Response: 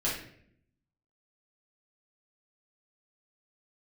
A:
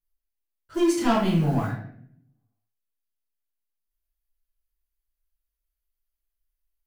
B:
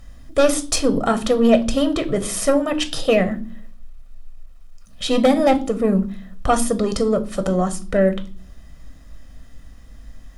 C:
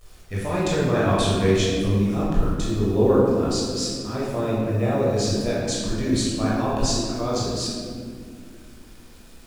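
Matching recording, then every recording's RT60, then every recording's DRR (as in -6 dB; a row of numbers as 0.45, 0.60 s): A; 0.65 s, not exponential, 2.2 s; -7.0, 8.0, -7.5 dB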